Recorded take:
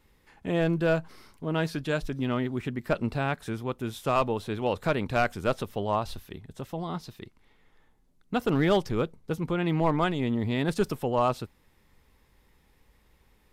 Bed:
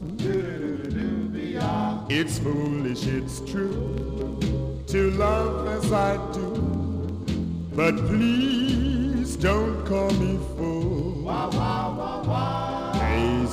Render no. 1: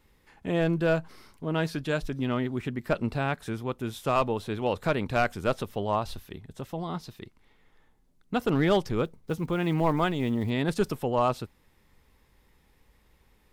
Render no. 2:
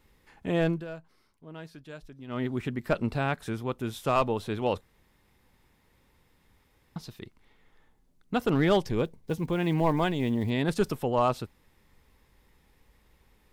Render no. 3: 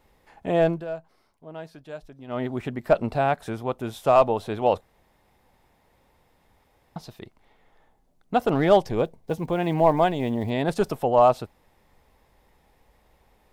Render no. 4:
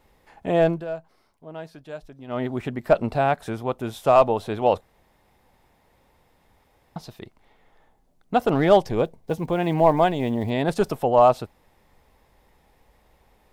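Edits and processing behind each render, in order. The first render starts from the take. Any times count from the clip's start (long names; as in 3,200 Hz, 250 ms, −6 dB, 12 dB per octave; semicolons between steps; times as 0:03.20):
0:09.04–0:10.51: one scale factor per block 7 bits
0:00.67–0:02.45: duck −15.5 dB, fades 0.18 s; 0:04.81–0:06.96: fill with room tone; 0:08.80–0:10.63: notch filter 1,300 Hz, Q 5.1
parametric band 690 Hz +11.5 dB 0.93 octaves
level +1.5 dB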